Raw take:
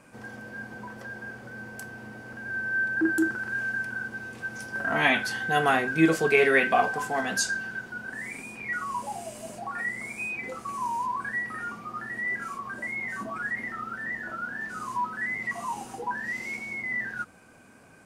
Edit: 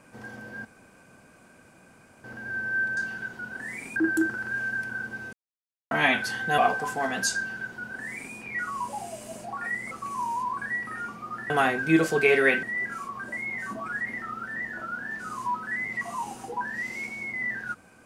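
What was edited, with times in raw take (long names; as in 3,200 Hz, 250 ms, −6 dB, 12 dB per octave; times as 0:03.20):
0:00.65–0:02.24: fill with room tone
0:04.34–0:04.92: silence
0:05.59–0:06.72: move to 0:12.13
0:07.50–0:08.49: duplicate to 0:02.97
0:10.05–0:10.54: remove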